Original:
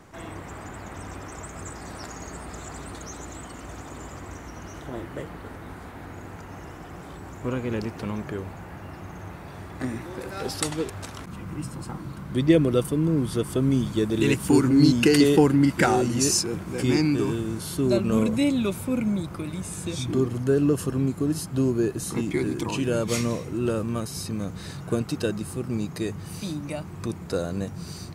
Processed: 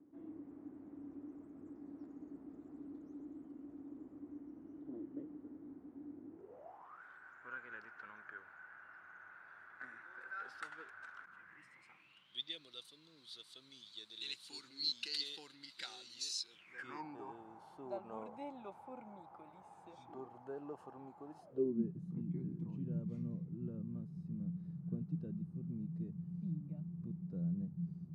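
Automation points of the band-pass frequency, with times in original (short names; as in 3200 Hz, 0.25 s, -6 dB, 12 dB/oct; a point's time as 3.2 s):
band-pass, Q 11
6.3 s 290 Hz
7.02 s 1500 Hz
11.36 s 1500 Hz
12.59 s 4000 Hz
16.48 s 4000 Hz
17.05 s 820 Hz
21.37 s 820 Hz
21.89 s 170 Hz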